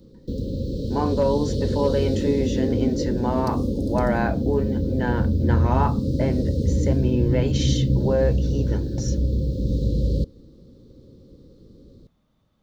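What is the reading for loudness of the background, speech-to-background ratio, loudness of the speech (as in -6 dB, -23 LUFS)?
-24.0 LUFS, -3.0 dB, -27.0 LUFS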